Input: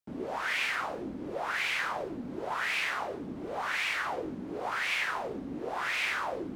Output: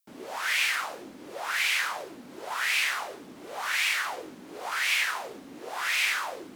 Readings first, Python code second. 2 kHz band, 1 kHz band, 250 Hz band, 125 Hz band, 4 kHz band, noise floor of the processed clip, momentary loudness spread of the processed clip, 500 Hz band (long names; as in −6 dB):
+4.0 dB, 0.0 dB, −7.5 dB, below −10 dB, +7.0 dB, −47 dBFS, 18 LU, −4.0 dB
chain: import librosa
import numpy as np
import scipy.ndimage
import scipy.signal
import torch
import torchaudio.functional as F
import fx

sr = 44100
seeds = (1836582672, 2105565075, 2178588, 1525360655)

y = fx.tilt_eq(x, sr, slope=4.0)